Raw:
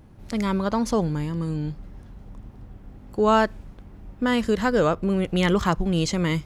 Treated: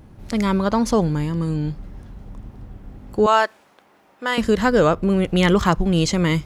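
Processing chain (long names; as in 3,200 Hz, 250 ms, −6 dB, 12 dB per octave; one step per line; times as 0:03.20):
0:03.26–0:04.38: high-pass filter 640 Hz 12 dB per octave
level +4.5 dB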